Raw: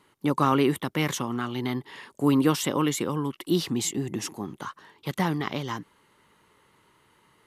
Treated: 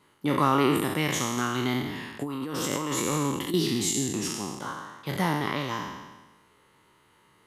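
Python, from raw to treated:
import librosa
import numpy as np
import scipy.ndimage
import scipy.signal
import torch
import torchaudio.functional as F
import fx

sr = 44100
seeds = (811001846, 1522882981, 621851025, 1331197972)

y = fx.spec_trails(x, sr, decay_s=1.22)
y = fx.over_compress(y, sr, threshold_db=-26.0, ratio=-1.0, at=(1.37, 3.54))
y = y * librosa.db_to_amplitude(-2.5)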